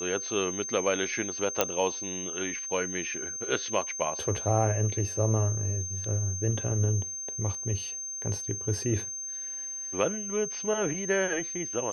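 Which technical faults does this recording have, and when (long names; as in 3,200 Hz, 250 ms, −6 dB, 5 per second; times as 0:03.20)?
whistle 6,300 Hz −34 dBFS
0:01.61: click −6 dBFS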